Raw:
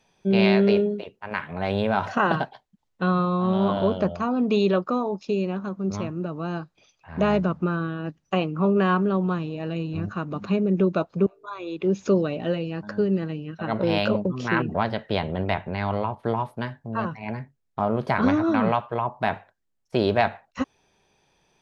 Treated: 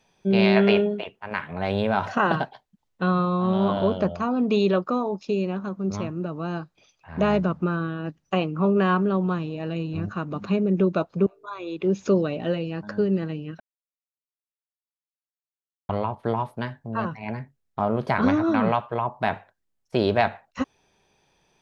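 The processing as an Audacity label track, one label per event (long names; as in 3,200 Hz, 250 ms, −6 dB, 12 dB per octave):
0.560000	1.210000	gain on a spectral selection 610–3,600 Hz +8 dB
13.600000	15.890000	silence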